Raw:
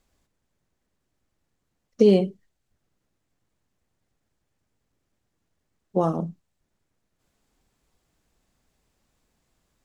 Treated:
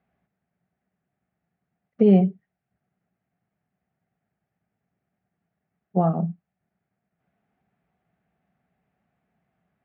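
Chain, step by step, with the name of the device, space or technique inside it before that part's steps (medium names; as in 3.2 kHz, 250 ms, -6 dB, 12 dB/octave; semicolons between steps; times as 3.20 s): bass cabinet (cabinet simulation 76–2300 Hz, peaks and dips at 87 Hz -8 dB, 180 Hz +8 dB, 310 Hz -8 dB, 510 Hz -6 dB, 720 Hz +8 dB, 1 kHz -8 dB)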